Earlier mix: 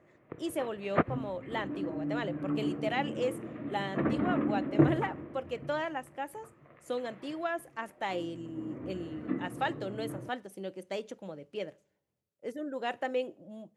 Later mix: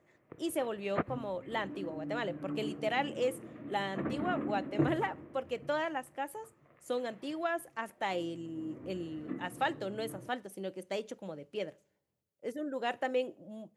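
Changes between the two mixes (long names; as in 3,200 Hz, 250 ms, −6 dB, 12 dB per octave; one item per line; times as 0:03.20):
background −6.5 dB
master: add high-shelf EQ 8,900 Hz +5 dB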